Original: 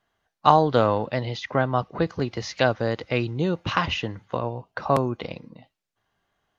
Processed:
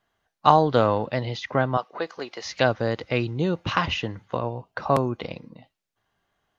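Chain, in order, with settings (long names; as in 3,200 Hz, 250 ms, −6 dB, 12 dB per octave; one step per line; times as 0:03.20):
0:01.77–0:02.45: high-pass filter 520 Hz 12 dB per octave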